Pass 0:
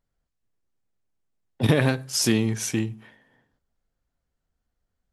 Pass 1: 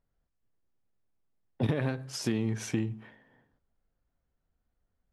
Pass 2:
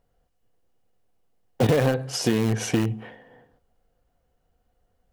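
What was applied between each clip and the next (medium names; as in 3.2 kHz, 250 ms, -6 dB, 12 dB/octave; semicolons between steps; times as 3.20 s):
compression 6:1, threshold -25 dBFS, peak gain reduction 11 dB; low-pass 1.9 kHz 6 dB/octave
small resonant body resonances 500/720/2900 Hz, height 11 dB, ringing for 40 ms; in parallel at -11 dB: integer overflow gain 24 dB; on the sum: trim +6.5 dB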